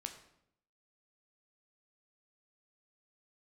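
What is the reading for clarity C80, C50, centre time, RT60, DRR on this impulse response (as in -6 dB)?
12.0 dB, 9.5 dB, 15 ms, 0.75 s, 5.0 dB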